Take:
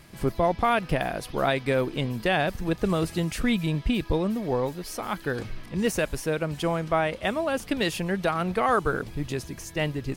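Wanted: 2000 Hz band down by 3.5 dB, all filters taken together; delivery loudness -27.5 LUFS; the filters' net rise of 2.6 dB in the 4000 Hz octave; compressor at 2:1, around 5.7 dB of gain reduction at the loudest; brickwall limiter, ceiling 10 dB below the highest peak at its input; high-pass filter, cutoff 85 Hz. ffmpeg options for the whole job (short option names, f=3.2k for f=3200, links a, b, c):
-af "highpass=85,equalizer=f=2k:t=o:g=-6,equalizer=f=4k:t=o:g=5.5,acompressor=threshold=-30dB:ratio=2,volume=9.5dB,alimiter=limit=-18dB:level=0:latency=1"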